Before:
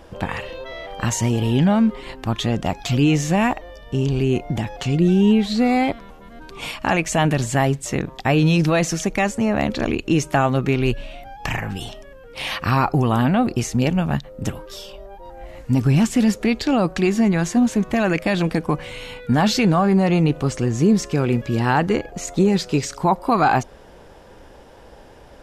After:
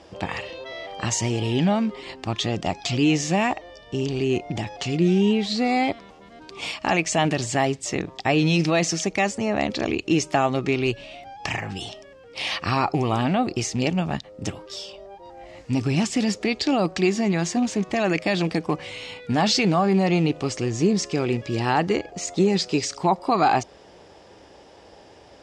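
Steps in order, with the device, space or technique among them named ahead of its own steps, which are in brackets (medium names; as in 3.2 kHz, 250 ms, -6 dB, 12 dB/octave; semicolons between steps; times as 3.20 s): car door speaker with a rattle (rattle on loud lows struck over -17 dBFS, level -31 dBFS; cabinet simulation 110–8300 Hz, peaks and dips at 140 Hz -8 dB, 230 Hz -7 dB, 510 Hz -4 dB, 1 kHz -4 dB, 1.5 kHz -7 dB, 5 kHz +5 dB)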